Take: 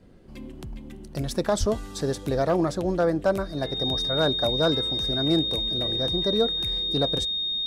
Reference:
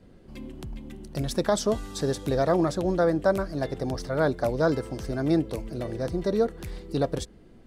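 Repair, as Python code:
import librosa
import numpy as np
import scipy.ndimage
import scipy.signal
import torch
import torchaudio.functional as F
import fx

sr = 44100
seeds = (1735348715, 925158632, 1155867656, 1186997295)

y = fx.fix_declip(x, sr, threshold_db=-13.0)
y = fx.notch(y, sr, hz=3700.0, q=30.0)
y = fx.highpass(y, sr, hz=140.0, slope=24, at=(1.59, 1.71), fade=0.02)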